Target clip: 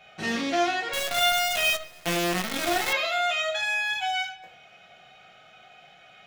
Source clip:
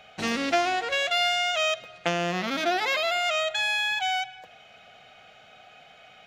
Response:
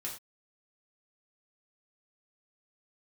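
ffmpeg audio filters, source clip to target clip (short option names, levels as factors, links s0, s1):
-filter_complex "[1:a]atrim=start_sample=2205[s0];[0:a][s0]afir=irnorm=-1:irlink=0,asettb=1/sr,asplit=3[s1][s2][s3];[s1]atrim=end=0.934[s4];[s2]atrim=start=0.93:end=2.93,asetpts=PTS-STARTPTS,afade=t=in:d=0.004:c=qsin,afade=t=out:st=1.996:d=0.004:c=qsin,acrusher=bits=5:dc=4:mix=0:aa=0.000001[s5];[s3]atrim=start=2.926[s6];[s4][s5]acrossfade=d=0.004:c1=hsin:c2=qsin[s7];[s7][s6]acrossfade=d=0.004:c1=qsin:c2=hsin,volume=0.891"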